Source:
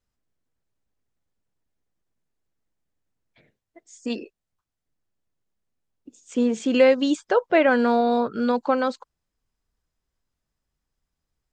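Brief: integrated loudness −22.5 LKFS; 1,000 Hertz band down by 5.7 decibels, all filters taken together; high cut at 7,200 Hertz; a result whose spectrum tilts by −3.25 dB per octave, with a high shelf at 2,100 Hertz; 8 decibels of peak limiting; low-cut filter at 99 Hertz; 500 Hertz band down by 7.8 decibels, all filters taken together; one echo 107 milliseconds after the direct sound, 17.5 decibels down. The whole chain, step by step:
high-pass filter 99 Hz
low-pass filter 7,200 Hz
parametric band 500 Hz −7.5 dB
parametric band 1,000 Hz −6 dB
high-shelf EQ 2,100 Hz +6 dB
brickwall limiter −16.5 dBFS
single-tap delay 107 ms −17.5 dB
level +4.5 dB

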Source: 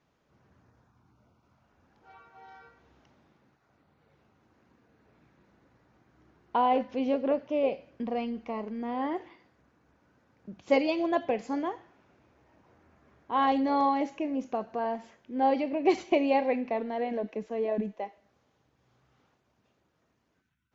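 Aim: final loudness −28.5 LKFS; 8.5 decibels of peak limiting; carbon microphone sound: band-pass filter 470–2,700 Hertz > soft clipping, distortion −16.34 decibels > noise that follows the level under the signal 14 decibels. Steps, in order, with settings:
brickwall limiter −20.5 dBFS
band-pass filter 470–2,700 Hz
soft clipping −26.5 dBFS
noise that follows the level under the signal 14 dB
level +8 dB

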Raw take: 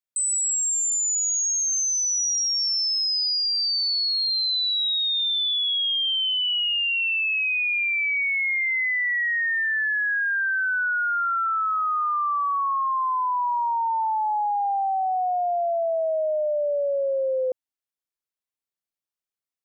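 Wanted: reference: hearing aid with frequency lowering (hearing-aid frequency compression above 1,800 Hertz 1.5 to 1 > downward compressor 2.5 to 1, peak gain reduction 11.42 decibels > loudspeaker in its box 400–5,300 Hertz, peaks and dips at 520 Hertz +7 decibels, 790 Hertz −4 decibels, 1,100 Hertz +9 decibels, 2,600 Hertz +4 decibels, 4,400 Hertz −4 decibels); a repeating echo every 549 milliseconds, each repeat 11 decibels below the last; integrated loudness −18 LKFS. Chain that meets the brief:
repeating echo 549 ms, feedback 28%, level −11 dB
hearing-aid frequency compression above 1,800 Hz 1.5 to 1
downward compressor 2.5 to 1, threshold −39 dBFS
loudspeaker in its box 400–5,300 Hz, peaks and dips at 520 Hz +7 dB, 790 Hz −4 dB, 1,100 Hz +9 dB, 2,600 Hz +4 dB, 4,400 Hz −4 dB
level +13.5 dB

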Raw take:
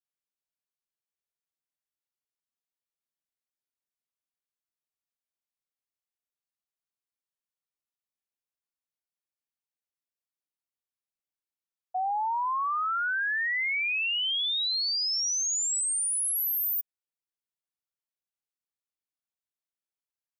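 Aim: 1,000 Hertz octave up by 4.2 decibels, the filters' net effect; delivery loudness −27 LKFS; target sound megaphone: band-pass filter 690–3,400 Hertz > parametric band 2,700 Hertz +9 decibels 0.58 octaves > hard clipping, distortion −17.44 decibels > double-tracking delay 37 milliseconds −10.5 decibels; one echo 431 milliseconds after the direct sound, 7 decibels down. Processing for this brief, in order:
band-pass filter 690–3,400 Hz
parametric band 1,000 Hz +6 dB
parametric band 2,700 Hz +9 dB 0.58 octaves
single-tap delay 431 ms −7 dB
hard clipping −20.5 dBFS
double-tracking delay 37 ms −10.5 dB
level −4 dB

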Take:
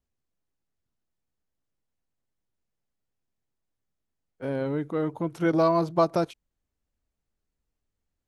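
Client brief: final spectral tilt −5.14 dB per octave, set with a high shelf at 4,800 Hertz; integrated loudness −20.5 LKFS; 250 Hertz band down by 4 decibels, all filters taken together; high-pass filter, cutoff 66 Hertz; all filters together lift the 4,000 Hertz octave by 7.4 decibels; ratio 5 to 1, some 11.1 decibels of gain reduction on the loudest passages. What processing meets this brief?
high-pass filter 66 Hz
parametric band 250 Hz −6.5 dB
parametric band 4,000 Hz +4.5 dB
high-shelf EQ 4,800 Hz +8.5 dB
downward compressor 5 to 1, threshold −30 dBFS
level +15 dB

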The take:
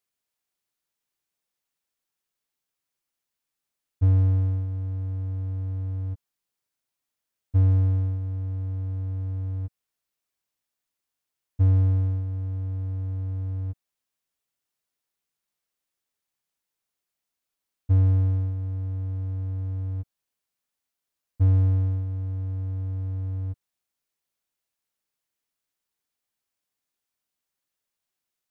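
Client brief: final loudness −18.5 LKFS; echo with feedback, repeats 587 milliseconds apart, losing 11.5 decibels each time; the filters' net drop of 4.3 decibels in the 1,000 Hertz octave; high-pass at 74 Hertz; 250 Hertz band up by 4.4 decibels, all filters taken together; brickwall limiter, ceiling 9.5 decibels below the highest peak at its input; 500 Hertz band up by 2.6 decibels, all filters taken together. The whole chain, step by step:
high-pass filter 74 Hz
parametric band 250 Hz +4.5 dB
parametric band 500 Hz +3.5 dB
parametric band 1,000 Hz −7.5 dB
brickwall limiter −24 dBFS
repeating echo 587 ms, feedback 27%, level −11.5 dB
level +14 dB

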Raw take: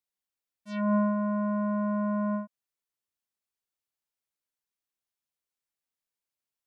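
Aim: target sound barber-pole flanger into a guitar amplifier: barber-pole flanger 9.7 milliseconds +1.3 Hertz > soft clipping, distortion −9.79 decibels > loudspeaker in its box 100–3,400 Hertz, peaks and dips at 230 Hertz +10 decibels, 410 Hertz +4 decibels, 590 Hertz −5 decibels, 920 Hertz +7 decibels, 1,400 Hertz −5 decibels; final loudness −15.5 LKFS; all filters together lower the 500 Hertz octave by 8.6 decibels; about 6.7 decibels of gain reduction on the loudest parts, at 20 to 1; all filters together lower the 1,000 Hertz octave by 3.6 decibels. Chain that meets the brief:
parametric band 500 Hz −5 dB
parametric band 1,000 Hz −5.5 dB
downward compressor 20 to 1, threshold −31 dBFS
barber-pole flanger 9.7 ms +1.3 Hz
soft clipping −39.5 dBFS
loudspeaker in its box 100–3,400 Hz, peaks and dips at 230 Hz +10 dB, 410 Hz +4 dB, 590 Hz −5 dB, 920 Hz +7 dB, 1,400 Hz −5 dB
level +23 dB

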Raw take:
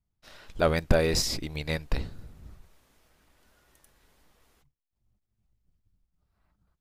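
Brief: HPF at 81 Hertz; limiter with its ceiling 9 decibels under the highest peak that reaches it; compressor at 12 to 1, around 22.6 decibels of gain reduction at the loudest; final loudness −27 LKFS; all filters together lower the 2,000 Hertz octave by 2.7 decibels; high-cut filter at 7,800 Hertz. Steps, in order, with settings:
high-pass filter 81 Hz
low-pass filter 7,800 Hz
parametric band 2,000 Hz −3.5 dB
downward compressor 12 to 1, threshold −42 dBFS
level +23.5 dB
brickwall limiter −14 dBFS

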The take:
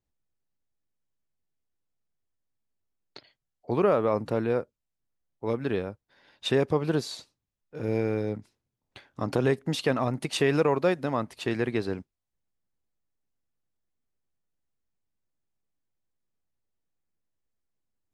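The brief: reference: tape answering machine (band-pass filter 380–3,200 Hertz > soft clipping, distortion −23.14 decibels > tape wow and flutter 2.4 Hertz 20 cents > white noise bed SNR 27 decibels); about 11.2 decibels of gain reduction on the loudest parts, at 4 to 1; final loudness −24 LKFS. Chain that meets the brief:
downward compressor 4 to 1, threshold −32 dBFS
band-pass filter 380–3,200 Hz
soft clipping −25 dBFS
tape wow and flutter 2.4 Hz 20 cents
white noise bed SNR 27 dB
level +16.5 dB

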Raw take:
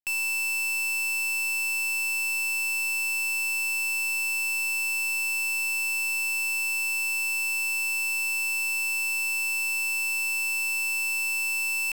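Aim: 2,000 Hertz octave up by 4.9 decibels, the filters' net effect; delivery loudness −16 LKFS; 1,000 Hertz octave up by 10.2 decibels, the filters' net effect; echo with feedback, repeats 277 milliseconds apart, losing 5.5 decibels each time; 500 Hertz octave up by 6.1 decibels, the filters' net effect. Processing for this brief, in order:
parametric band 500 Hz +4 dB
parametric band 1,000 Hz +9 dB
parametric band 2,000 Hz +6.5 dB
repeating echo 277 ms, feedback 53%, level −5.5 dB
level −1 dB

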